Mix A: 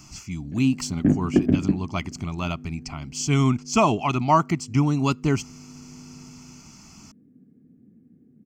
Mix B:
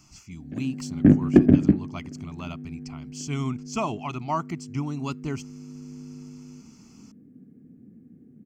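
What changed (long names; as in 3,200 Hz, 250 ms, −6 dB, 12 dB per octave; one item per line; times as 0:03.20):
speech −9.0 dB
background +4.0 dB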